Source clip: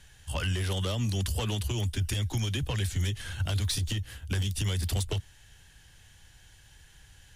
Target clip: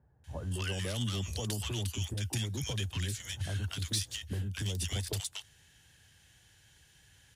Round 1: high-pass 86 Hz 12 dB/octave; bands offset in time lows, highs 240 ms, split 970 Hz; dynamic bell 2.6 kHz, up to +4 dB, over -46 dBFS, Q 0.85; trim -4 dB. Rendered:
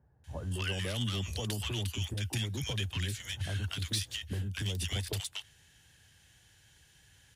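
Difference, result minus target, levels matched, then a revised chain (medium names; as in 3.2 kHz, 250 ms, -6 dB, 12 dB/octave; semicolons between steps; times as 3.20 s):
8 kHz band -3.0 dB
high-pass 86 Hz 12 dB/octave; bands offset in time lows, highs 240 ms, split 970 Hz; dynamic bell 6.6 kHz, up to +4 dB, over -46 dBFS, Q 0.85; trim -4 dB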